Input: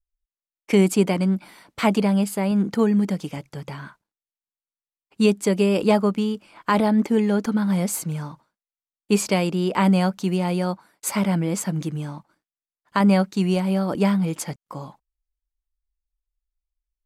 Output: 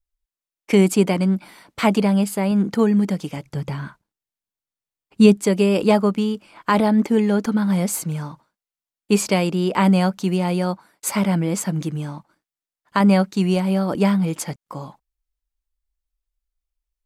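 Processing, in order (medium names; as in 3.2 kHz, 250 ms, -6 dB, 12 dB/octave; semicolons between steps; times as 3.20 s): 3.46–5.37 s: bass shelf 260 Hz +8.5 dB; trim +2 dB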